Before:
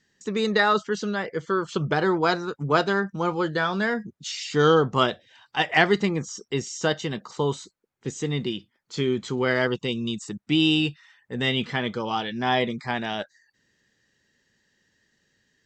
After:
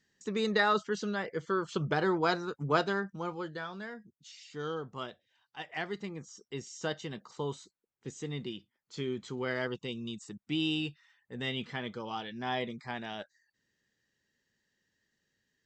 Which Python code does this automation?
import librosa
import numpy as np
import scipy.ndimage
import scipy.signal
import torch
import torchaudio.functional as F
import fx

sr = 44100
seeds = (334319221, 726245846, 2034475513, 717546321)

y = fx.gain(x, sr, db=fx.line((2.75, -6.5), (3.99, -19.0), (5.67, -19.0), (6.85, -11.0)))